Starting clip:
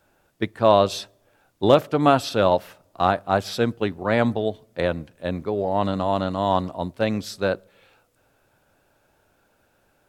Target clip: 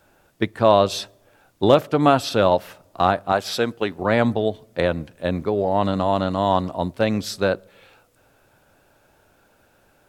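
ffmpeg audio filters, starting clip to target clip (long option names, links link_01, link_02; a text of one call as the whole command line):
ffmpeg -i in.wav -filter_complex "[0:a]asettb=1/sr,asplit=3[link_01][link_02][link_03];[link_01]atrim=end=3.324[link_04];[link_02]atrim=start=3.32:end=3.99,asetpts=PTS-STARTPTS,afade=type=in:duration=0.004:curve=qsin,afade=type=out:start_time=0.666:duration=0.004:curve=qsin,lowshelf=frequency=230:gain=-11.5[link_05];[link_03]atrim=start=3.986[link_06];[link_04][link_05]acrossfade=duration=0.004:curve1=hsin:curve2=qsin[link_07];[link_07][link_06]acrossfade=duration=0.004:curve1=qsin:curve2=hsin,asplit=2[link_08][link_09];[link_09]acompressor=threshold=-25dB:ratio=6,volume=0.5dB[link_10];[link_08][link_10]amix=inputs=2:normalize=0,volume=-1dB" out.wav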